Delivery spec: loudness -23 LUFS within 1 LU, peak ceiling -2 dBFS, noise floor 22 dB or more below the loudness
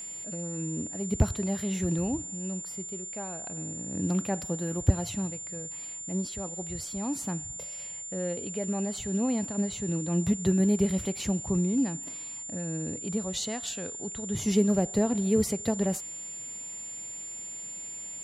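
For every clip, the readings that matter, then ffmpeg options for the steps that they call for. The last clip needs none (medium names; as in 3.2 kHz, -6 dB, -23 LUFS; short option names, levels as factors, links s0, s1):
steady tone 7.2 kHz; tone level -37 dBFS; loudness -30.5 LUFS; peak level -12.0 dBFS; loudness target -23.0 LUFS
-> -af "bandreject=f=7200:w=30"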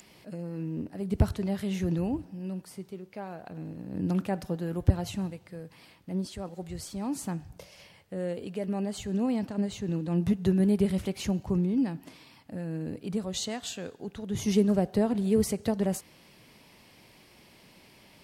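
steady tone not found; loudness -30.5 LUFS; peak level -12.5 dBFS; loudness target -23.0 LUFS
-> -af "volume=2.37"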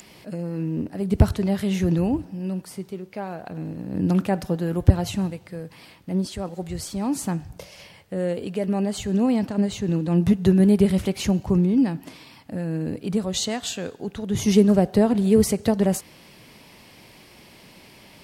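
loudness -23.0 LUFS; peak level -5.0 dBFS; noise floor -50 dBFS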